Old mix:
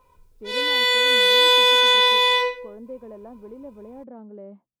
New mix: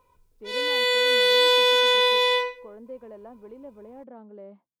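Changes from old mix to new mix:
speech: add tilt +2.5 dB/oct; background: send -8.5 dB

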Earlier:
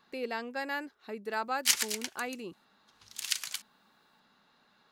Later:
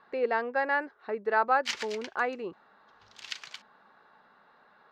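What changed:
speech: add band shelf 880 Hz +9.5 dB 2.6 oct; master: add air absorption 190 m

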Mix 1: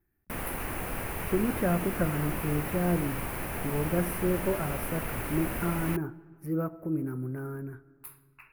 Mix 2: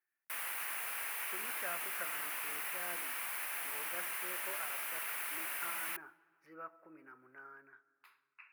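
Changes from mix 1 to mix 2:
speech: add air absorption 190 m; master: add HPF 1500 Hz 12 dB/oct

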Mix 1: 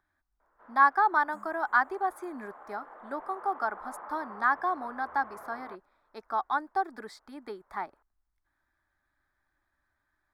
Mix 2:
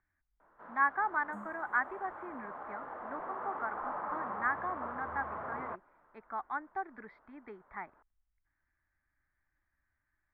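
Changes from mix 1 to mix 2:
speech: add ladder low-pass 2400 Hz, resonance 60%; first sound +5.0 dB; master: add tone controls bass +10 dB, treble -6 dB

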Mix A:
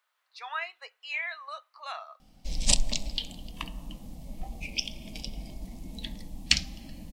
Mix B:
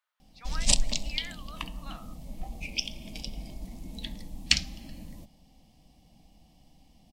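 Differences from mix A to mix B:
speech -8.5 dB; background: entry -2.00 s

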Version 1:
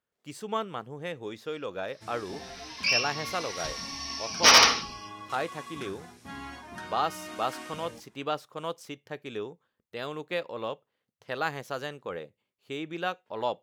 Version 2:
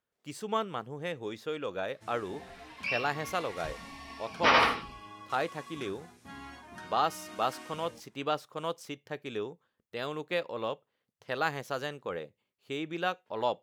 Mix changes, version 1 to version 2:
first sound -5.0 dB; second sound: add air absorption 430 m

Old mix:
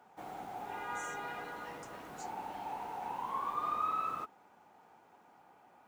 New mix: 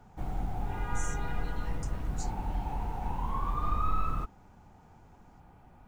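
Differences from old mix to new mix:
speech +8.0 dB; master: remove HPF 420 Hz 12 dB/oct

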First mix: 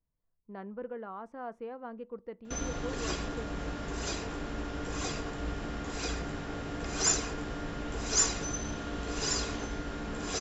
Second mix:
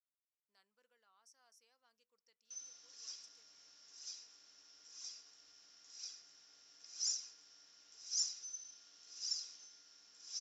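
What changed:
speech: remove tape spacing loss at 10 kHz 37 dB; master: add band-pass 5500 Hz, Q 10

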